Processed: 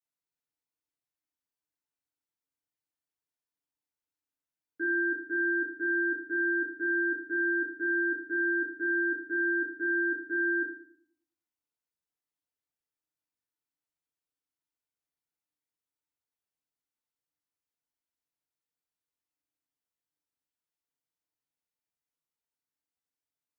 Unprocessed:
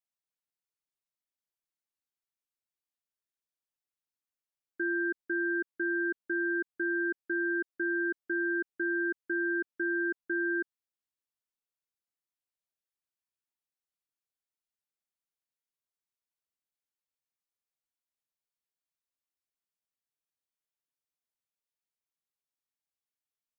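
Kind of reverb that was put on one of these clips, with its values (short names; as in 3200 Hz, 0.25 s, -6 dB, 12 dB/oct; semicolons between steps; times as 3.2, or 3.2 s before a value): FDN reverb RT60 0.54 s, low-frequency decay 1.45×, high-frequency decay 0.45×, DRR -5 dB; gain -7 dB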